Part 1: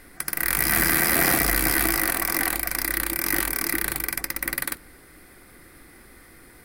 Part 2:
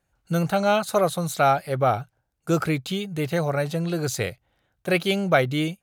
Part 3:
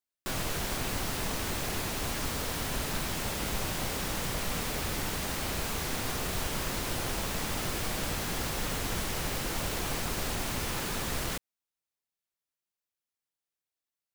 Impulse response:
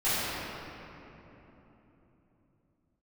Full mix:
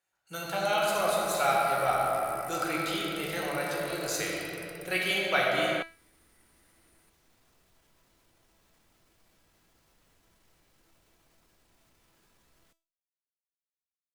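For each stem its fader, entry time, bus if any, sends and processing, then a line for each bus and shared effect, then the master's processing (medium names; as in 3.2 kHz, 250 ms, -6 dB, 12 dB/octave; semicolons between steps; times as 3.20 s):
-11.0 dB, 0.45 s, no send, peak limiter -15 dBFS, peak gain reduction 10 dB; peaking EQ 9.2 kHz +12.5 dB 0.26 oct
+2.5 dB, 0.00 s, send -7 dB, high-pass 1.3 kHz 6 dB/octave
-18.0 dB, 1.35 s, no send, peak limiter -31 dBFS, peak gain reduction 11 dB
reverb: on, RT60 3.5 s, pre-delay 5 ms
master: feedback comb 330 Hz, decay 0.35 s, harmonics all, mix 70%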